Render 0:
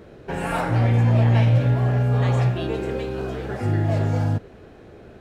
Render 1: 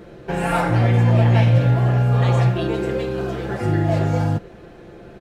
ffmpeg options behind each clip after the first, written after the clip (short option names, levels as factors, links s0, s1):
-af "aecho=1:1:5.8:0.46,volume=1.41"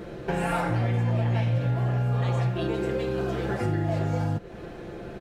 -af "acompressor=threshold=0.0355:ratio=3,volume=1.33"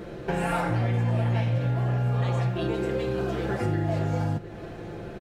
-af "aecho=1:1:708:0.119"